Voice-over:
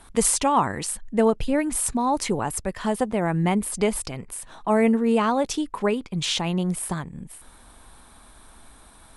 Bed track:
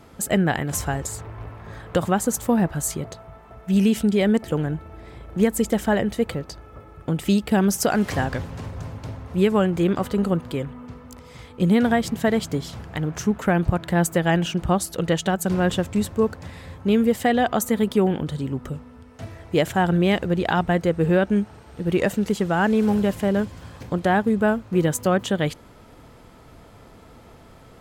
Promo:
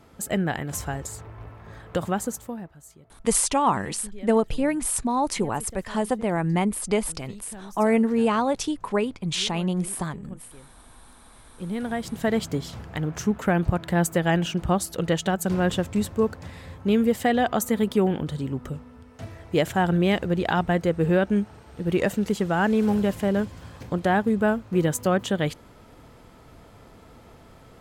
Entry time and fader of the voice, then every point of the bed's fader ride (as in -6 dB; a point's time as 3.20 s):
3.10 s, -1.0 dB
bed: 2.23 s -5 dB
2.78 s -23 dB
11.10 s -23 dB
12.36 s -2 dB